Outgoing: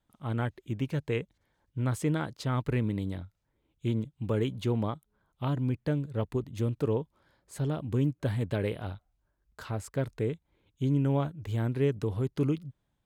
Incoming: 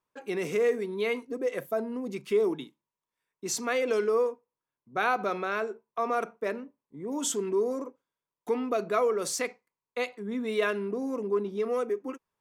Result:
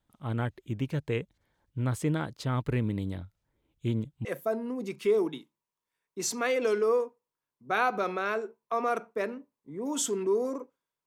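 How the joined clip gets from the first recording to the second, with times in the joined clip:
outgoing
0:04.25: continue with incoming from 0:01.51

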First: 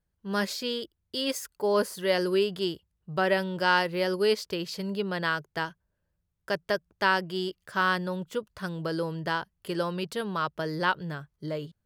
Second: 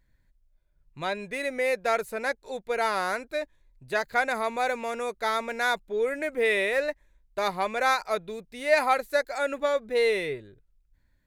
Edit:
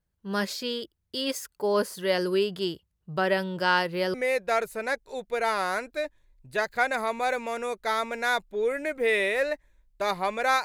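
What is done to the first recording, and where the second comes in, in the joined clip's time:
first
0:04.14: continue with second from 0:01.51

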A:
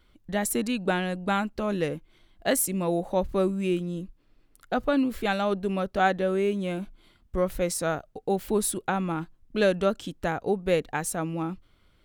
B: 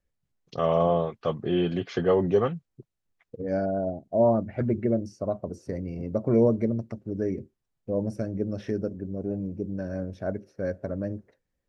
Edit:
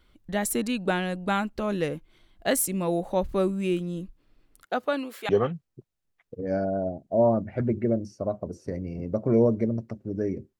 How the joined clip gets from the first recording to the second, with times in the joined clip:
A
0:04.63–0:05.29: high-pass filter 250 Hz → 690 Hz
0:05.29: continue with B from 0:02.30

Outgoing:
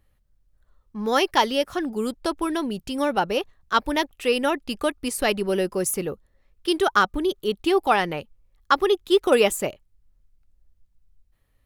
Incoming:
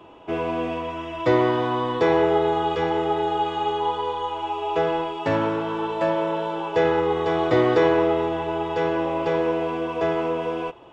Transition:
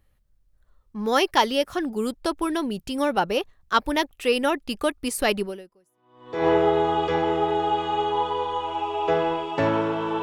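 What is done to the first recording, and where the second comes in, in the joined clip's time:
outgoing
0:05.94: continue with incoming from 0:01.62, crossfade 1.06 s exponential

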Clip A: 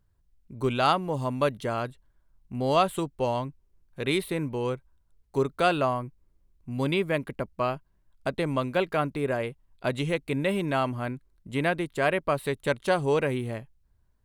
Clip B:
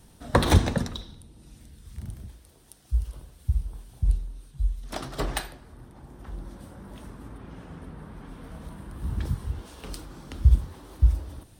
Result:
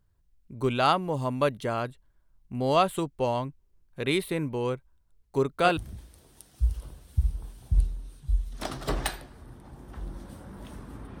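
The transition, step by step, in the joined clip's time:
clip A
0:05.01–0:05.77: delay that plays each chunk backwards 638 ms, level −5 dB
0:05.77: continue with clip B from 0:02.08

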